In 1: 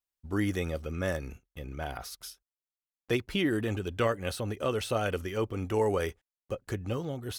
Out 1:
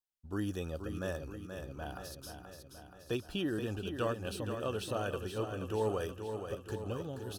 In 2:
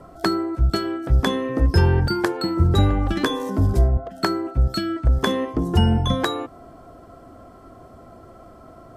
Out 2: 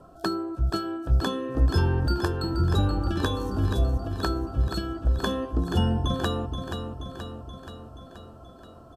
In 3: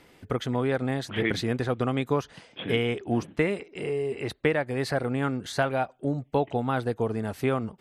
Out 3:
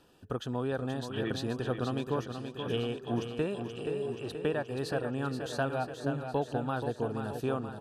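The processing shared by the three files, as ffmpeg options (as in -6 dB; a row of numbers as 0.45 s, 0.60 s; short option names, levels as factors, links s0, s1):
-af "asuperstop=centerf=2100:order=4:qfactor=3.1,aecho=1:1:478|956|1434|1912|2390|2868|3346|3824:0.422|0.253|0.152|0.0911|0.0547|0.0328|0.0197|0.0118,volume=0.473"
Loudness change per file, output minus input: -6.0 LU, -5.5 LU, -6.0 LU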